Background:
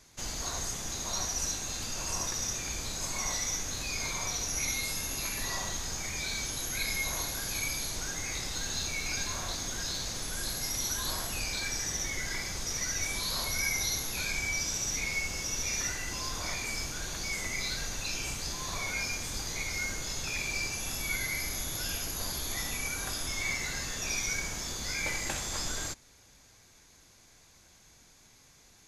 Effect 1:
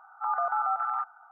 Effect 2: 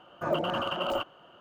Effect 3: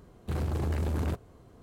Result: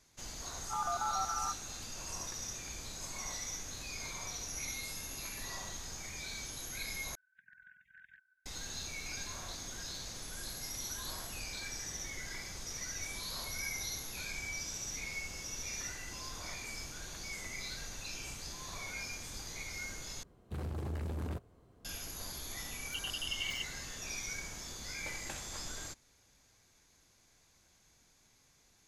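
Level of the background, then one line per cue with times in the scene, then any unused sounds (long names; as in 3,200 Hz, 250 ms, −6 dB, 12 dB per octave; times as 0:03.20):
background −8.5 dB
0:00.49: mix in 1 −7.5 dB
0:07.15: overwrite with 1 −5.5 dB + linear-phase brick-wall band-stop 230–1,500 Hz
0:20.23: overwrite with 3 −8.5 dB
0:22.60: mix in 2 −1 dB + linear-phase brick-wall high-pass 2,700 Hz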